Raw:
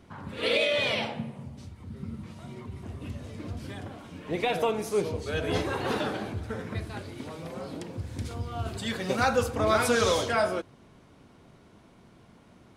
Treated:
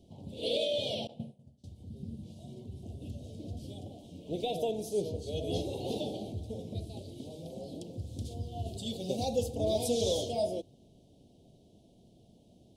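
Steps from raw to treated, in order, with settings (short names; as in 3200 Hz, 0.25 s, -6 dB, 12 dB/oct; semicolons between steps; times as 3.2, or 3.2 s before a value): elliptic band-stop 690–3200 Hz, stop band 70 dB; 1.07–1.64 expander -31 dBFS; gain -4 dB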